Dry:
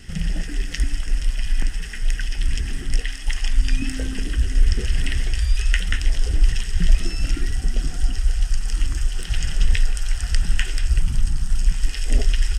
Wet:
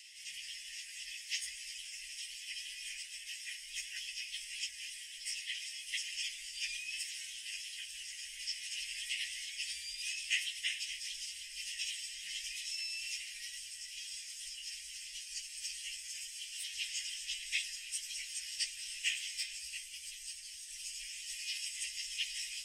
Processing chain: elliptic high-pass 2200 Hz, stop band 50 dB; plain phase-vocoder stretch 1.8×; gain -2 dB

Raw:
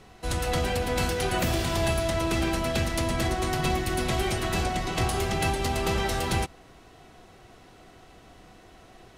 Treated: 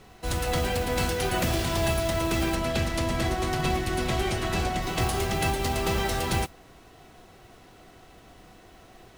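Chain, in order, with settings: modulation noise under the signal 18 dB; 2.55–4.83 high shelf 11000 Hz -10.5 dB

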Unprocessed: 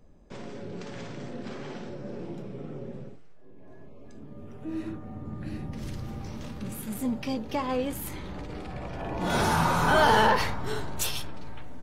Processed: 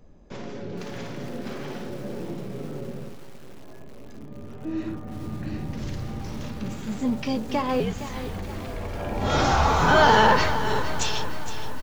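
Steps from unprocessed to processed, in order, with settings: downsampling 16000 Hz; 7.8–9.8 frequency shift -91 Hz; lo-fi delay 0.464 s, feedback 55%, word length 7-bit, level -11 dB; gain +4 dB

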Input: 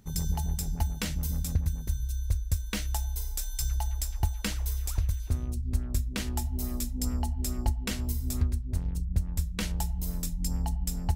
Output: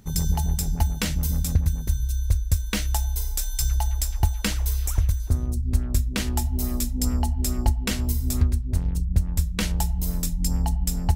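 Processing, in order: 4.76–4.99 spectral repair 2400–5300 Hz; 5.12–5.69 bell 2600 Hz -10 dB 0.97 oct; gain +6.5 dB

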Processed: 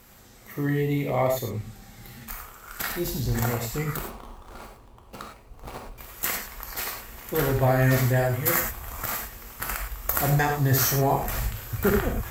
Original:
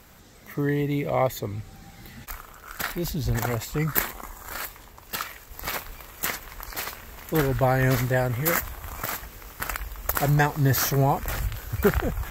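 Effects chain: 3.96–5.98 median filter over 25 samples; bell 12000 Hz +4 dB 1.2 oct; non-linear reverb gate 0.13 s flat, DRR 1 dB; gain -3 dB

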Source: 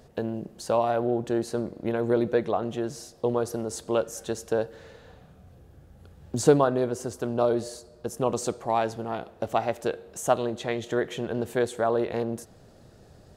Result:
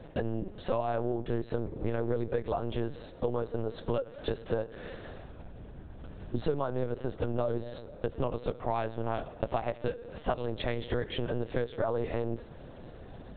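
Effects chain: compressor 6:1, threshold -34 dBFS, peak gain reduction 19.5 dB; LPC vocoder at 8 kHz pitch kept; gain +6 dB

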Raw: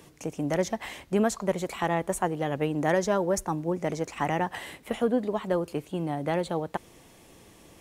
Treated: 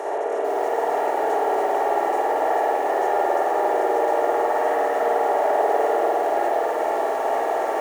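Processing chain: per-bin compression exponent 0.2; steep high-pass 390 Hz 36 dB/oct; tilt +1.5 dB/oct; notch comb 520 Hz; limiter -18 dBFS, peak gain reduction 11.5 dB; EQ curve 770 Hz 0 dB, 4700 Hz -19 dB, 9100 Hz -22 dB; diffused feedback echo 0.914 s, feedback 52%, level -7.5 dB; spring tank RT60 2.5 s, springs 51 ms, chirp 55 ms, DRR -5 dB; lo-fi delay 0.445 s, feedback 35%, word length 7-bit, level -5.5 dB

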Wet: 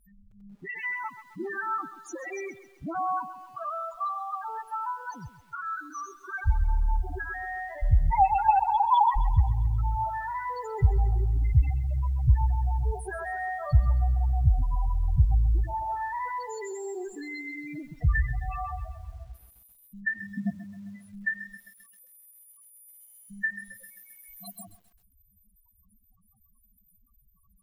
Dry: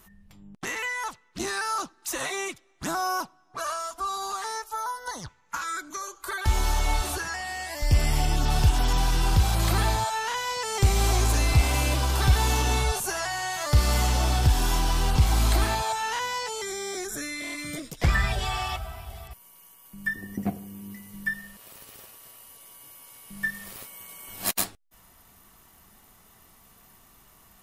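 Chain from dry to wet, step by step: 8.11–9.16 sine-wave speech; 11.19–12.28 careless resampling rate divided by 3×, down none, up hold; loudest bins only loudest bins 4; lo-fi delay 0.132 s, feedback 55%, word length 9-bit, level -13.5 dB

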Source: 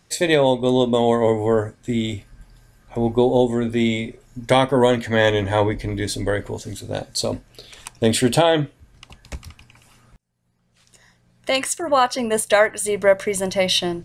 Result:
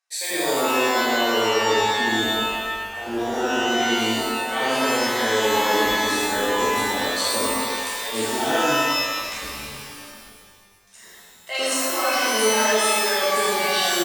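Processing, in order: gate with hold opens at -46 dBFS; bands offset in time highs, lows 0.1 s, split 670 Hz; reverse; compressor 10:1, threshold -29 dBFS, peak gain reduction 17 dB; reverse; resonant low shelf 180 Hz -13 dB, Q 1.5; on a send: flutter echo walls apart 7.8 m, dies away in 0.33 s; on the sum: shimmer reverb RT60 1.3 s, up +12 st, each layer -2 dB, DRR -7.5 dB

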